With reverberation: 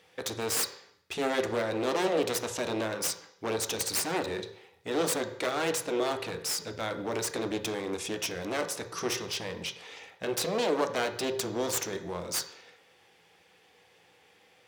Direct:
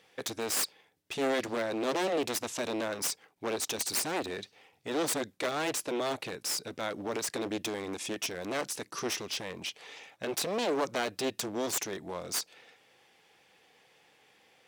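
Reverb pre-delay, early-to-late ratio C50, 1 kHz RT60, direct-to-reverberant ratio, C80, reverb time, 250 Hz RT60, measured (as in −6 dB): 3 ms, 11.0 dB, 0.70 s, 6.5 dB, 13.5 dB, 0.70 s, 0.70 s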